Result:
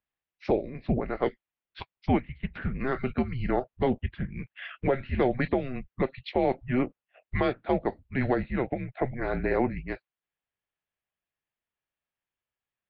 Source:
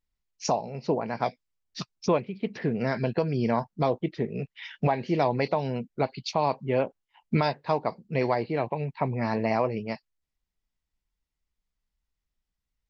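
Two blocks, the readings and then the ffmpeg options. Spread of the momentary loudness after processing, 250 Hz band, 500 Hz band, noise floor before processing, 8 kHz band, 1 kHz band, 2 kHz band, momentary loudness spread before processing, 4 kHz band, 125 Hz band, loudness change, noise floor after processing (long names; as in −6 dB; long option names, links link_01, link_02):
10 LU, +0.5 dB, −1.5 dB, −85 dBFS, can't be measured, −4.5 dB, +1.0 dB, 8 LU, −6.5 dB, −2.0 dB, −1.5 dB, below −85 dBFS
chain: -af "asubboost=boost=11:cutoff=70,highpass=frequency=210:width_type=q:width=0.5412,highpass=frequency=210:width_type=q:width=1.307,lowpass=frequency=3500:width_type=q:width=0.5176,lowpass=frequency=3500:width_type=q:width=0.7071,lowpass=frequency=3500:width_type=q:width=1.932,afreqshift=-260,volume=1.5dB"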